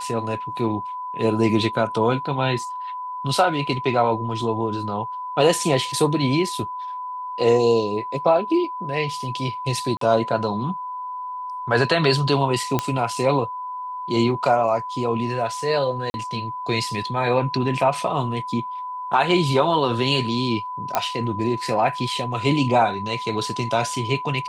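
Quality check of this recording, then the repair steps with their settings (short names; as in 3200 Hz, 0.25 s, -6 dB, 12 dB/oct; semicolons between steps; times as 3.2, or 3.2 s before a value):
tone 1000 Hz -28 dBFS
9.97–10.01 gap 43 ms
12.79 pop -6 dBFS
16.1–16.14 gap 41 ms
20.95 pop -5 dBFS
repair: de-click; notch 1000 Hz, Q 30; interpolate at 9.97, 43 ms; interpolate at 16.1, 41 ms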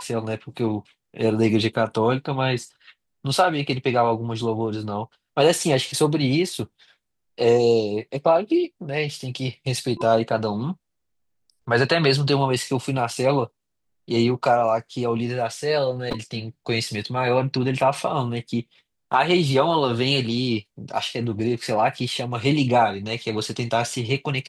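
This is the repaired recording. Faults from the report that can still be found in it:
none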